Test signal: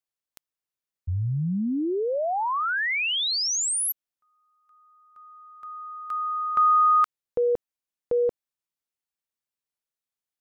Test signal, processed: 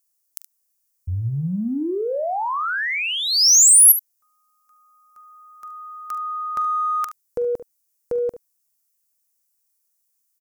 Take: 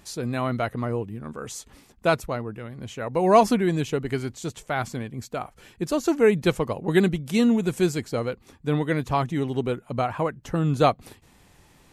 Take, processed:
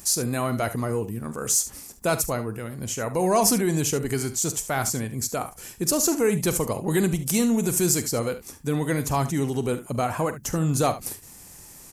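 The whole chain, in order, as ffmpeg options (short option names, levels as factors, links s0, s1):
-filter_complex "[0:a]acompressor=threshold=0.0631:ratio=2.5:attack=1.6:release=28:knee=6:detection=peak,aexciter=amount=2.4:drive=9.9:freq=5100,asplit=2[s0][s1];[s1]aecho=0:1:44|72:0.188|0.2[s2];[s0][s2]amix=inputs=2:normalize=0,volume=1.41"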